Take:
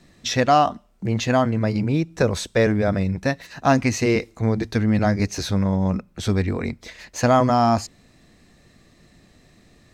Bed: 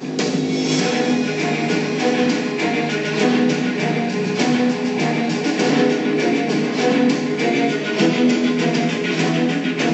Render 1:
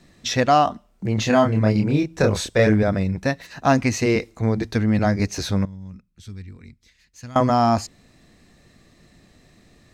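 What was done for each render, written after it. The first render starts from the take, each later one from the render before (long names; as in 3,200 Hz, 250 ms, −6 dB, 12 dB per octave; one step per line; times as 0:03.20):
0:01.15–0:02.83: double-tracking delay 28 ms −3 dB
0:05.65–0:07.36: guitar amp tone stack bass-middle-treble 6-0-2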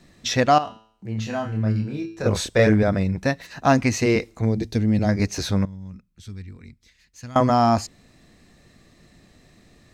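0:00.58–0:02.26: tuned comb filter 110 Hz, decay 0.59 s, mix 80%
0:04.45–0:05.09: parametric band 1,300 Hz −12.5 dB 1.5 octaves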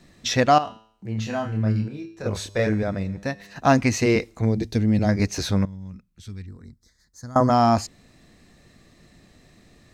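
0:01.88–0:03.56: tuned comb filter 100 Hz, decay 2 s, mix 50%
0:06.46–0:07.50: Butterworth band-reject 2,700 Hz, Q 1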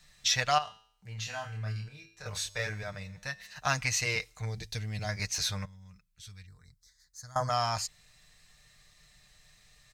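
guitar amp tone stack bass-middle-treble 10-0-10
comb filter 6.6 ms, depth 46%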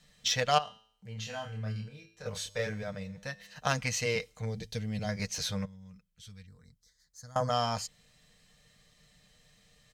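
harmonic generator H 3 −18 dB, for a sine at −11 dBFS
hollow resonant body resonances 220/480/3,100 Hz, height 13 dB, ringing for 30 ms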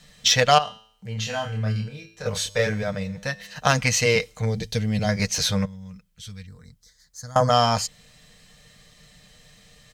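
level +11 dB
brickwall limiter −2 dBFS, peak gain reduction 3 dB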